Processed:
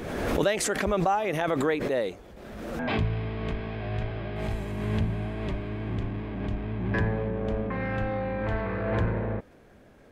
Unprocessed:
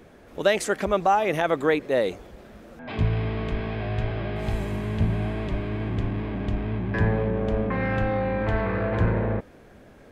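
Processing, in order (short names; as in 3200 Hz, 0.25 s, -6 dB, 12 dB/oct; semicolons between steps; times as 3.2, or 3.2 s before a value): backwards sustainer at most 34 dB/s; gain -5 dB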